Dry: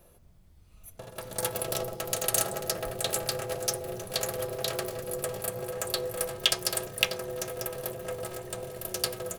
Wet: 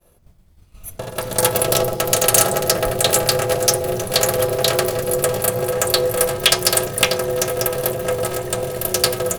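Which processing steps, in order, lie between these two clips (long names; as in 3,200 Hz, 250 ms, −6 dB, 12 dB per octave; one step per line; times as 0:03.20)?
sine wavefolder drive 11 dB, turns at −4.5 dBFS
downward expander −34 dBFS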